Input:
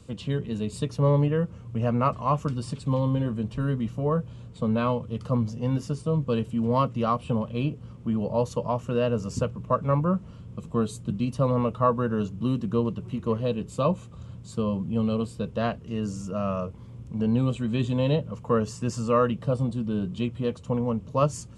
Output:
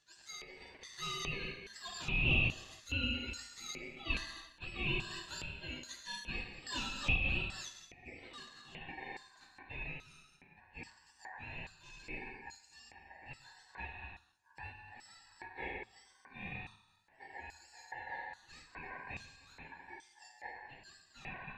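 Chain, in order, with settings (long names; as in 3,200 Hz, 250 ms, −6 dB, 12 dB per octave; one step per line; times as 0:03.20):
frequency axis turned over on the octave scale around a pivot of 1,200 Hz
high-shelf EQ 4,600 Hz −10.5 dB
reverb whose tail is shaped and stops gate 480 ms falling, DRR 0.5 dB
hard clipping −30 dBFS, distortion −8 dB
auto-filter band-pass square 1.2 Hz 910–5,100 Hz
dynamic equaliser 1,400 Hz, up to +5 dB, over −56 dBFS, Q 3.8
band-pass filter sweep 1,700 Hz → 390 Hz, 0:07.56–0:08.99
ring modulation 1,300 Hz
hum removal 108.2 Hz, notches 2
amplitude modulation by smooth noise, depth 60%
level +17.5 dB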